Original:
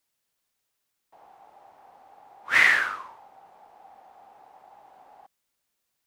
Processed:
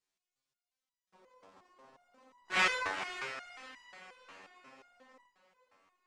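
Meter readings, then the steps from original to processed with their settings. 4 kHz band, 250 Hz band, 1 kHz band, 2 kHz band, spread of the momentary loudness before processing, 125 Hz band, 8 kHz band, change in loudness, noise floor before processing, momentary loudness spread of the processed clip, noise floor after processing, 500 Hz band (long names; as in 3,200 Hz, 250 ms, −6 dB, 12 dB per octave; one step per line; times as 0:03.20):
−4.5 dB, −0.5 dB, −4.5 dB, −12.5 dB, 15 LU, can't be measured, −4.5 dB, −13.0 dB, −79 dBFS, 22 LU, below −85 dBFS, 0.0 dB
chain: sub-harmonics by changed cycles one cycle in 3, inverted
low-pass filter 8,200 Hz 24 dB per octave
feedback delay with all-pass diffusion 480 ms, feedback 43%, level −10 dB
step-sequenced resonator 5.6 Hz 95–990 Hz
level +2.5 dB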